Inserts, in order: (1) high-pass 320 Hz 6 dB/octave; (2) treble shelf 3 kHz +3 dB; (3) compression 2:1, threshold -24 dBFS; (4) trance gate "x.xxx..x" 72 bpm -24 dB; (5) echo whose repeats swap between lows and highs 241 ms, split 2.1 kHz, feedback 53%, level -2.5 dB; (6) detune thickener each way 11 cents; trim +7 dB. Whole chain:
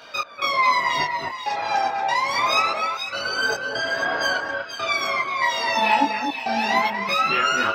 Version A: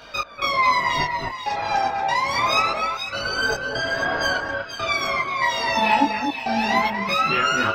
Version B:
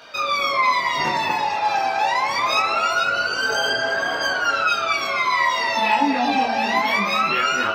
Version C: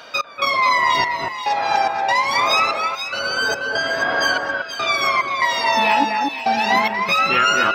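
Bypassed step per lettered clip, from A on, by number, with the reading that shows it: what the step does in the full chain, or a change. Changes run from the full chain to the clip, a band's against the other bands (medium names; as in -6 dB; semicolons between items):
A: 1, 125 Hz band +7.5 dB; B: 4, 250 Hz band +2.0 dB; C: 6, crest factor change -2.0 dB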